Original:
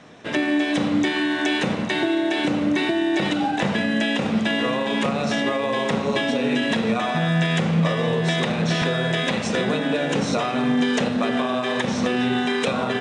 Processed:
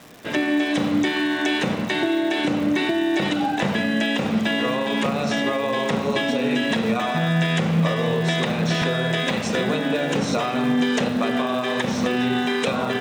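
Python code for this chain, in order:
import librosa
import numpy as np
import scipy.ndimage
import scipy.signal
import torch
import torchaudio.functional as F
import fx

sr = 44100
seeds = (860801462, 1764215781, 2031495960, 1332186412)

y = fx.dmg_crackle(x, sr, seeds[0], per_s=310.0, level_db=-34.0)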